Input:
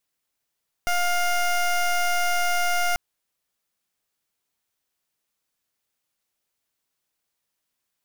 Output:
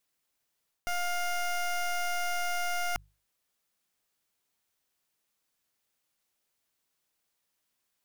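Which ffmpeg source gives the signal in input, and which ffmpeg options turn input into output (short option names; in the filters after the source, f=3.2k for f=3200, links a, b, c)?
-f lavfi -i "aevalsrc='0.0794*(2*lt(mod(706*t,1),0.18)-1)':d=2.09:s=44100"
-af "bandreject=f=50:t=h:w=6,bandreject=f=100:t=h:w=6,bandreject=f=150:t=h:w=6,areverse,acompressor=threshold=-32dB:ratio=6,areverse"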